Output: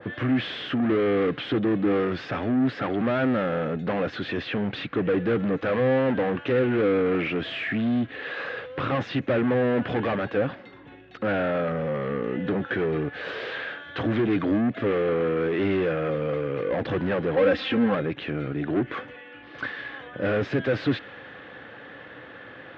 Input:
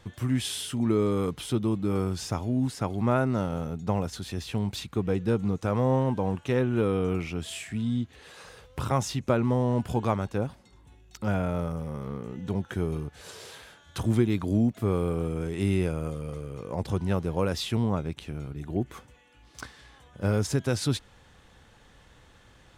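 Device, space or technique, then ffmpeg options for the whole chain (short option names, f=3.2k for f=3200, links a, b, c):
overdrive pedal into a guitar cabinet: -filter_complex "[0:a]asplit=2[a][b];[b]highpass=f=720:p=1,volume=32dB,asoftclip=type=tanh:threshold=-11dB[c];[a][c]amix=inputs=2:normalize=0,lowpass=f=1.3k:p=1,volume=-6dB,highpass=88,equalizer=f=120:t=q:w=4:g=4,equalizer=f=290:t=q:w=4:g=8,equalizer=f=520:t=q:w=4:g=5,equalizer=f=930:t=q:w=4:g=-7,equalizer=f=1.7k:t=q:w=4:g=6,lowpass=f=3.4k:w=0.5412,lowpass=f=3.4k:w=1.3066,asettb=1/sr,asplit=3[d][e][f];[d]atrim=end=17.364[g];[e]atrim=start=17.36:end=17.95,asetpts=PTS-STARTPTS,afade=t=in:d=0.004:c=qsin,afade=t=out:st=0.586:d=0.004:c=qsin,aecho=1:1:3.8:0.82,atrim=end_sample=26019[h];[f]atrim=start=17.946[i];[g][h]acrossfade=d=0.004:c1=hsin:c2=qsin[j];[j][i]acrossfade=d=0.004:c1=qsin:c2=hsin,adynamicequalizer=threshold=0.0251:dfrequency=1700:dqfactor=0.7:tfrequency=1700:tqfactor=0.7:attack=5:release=100:ratio=0.375:range=2:mode=boostabove:tftype=highshelf,volume=-7dB"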